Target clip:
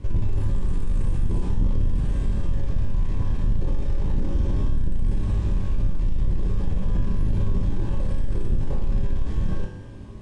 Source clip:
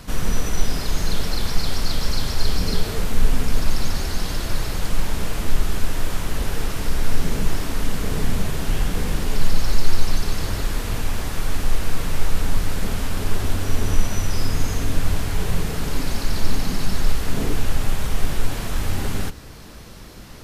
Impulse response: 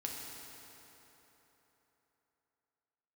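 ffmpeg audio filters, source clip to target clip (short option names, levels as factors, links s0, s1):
-filter_complex "[0:a]aemphasis=mode=reproduction:type=riaa,bandreject=f=670:w=18,aresample=11025,asoftclip=type=tanh:threshold=0.944,aresample=44100[s0];[1:a]atrim=start_sample=2205,asetrate=83790,aresample=44100[s1];[s0][s1]afir=irnorm=-1:irlink=0,asetrate=88200,aresample=44100,volume=0.447"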